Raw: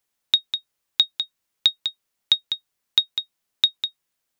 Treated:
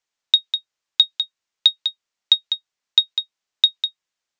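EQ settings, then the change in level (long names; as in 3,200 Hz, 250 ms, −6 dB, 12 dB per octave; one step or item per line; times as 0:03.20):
Butterworth low-pass 7,400 Hz 36 dB per octave
low-shelf EQ 430 Hz −9 dB
dynamic equaliser 3,700 Hz, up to +5 dB, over −29 dBFS, Q 0.81
−1.0 dB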